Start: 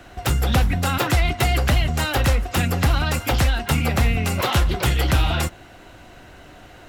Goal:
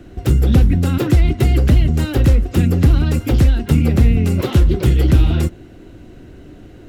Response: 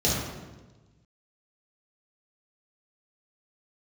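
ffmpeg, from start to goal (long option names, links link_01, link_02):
-af "lowshelf=frequency=530:width_type=q:width=1.5:gain=12.5,volume=-5.5dB"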